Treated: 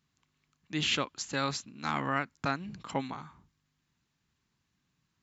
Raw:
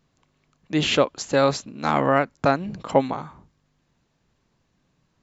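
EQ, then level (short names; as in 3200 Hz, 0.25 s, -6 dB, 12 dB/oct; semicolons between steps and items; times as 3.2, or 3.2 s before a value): HPF 43 Hz; low shelf 320 Hz -4.5 dB; bell 560 Hz -13 dB 1.3 oct; -5.0 dB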